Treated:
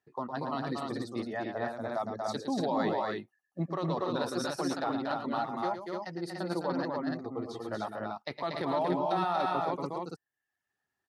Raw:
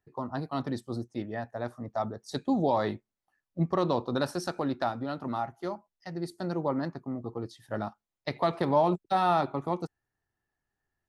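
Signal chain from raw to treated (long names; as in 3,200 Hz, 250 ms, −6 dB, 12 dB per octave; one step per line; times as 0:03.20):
meter weighting curve A
reverb reduction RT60 0.75 s
low-shelf EQ 260 Hz +11.5 dB
brickwall limiter −23 dBFS, peak gain reduction 9.5 dB
on a send: loudspeakers that aren't time-aligned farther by 38 metres −8 dB, 81 metres −4 dB, 100 metres −3 dB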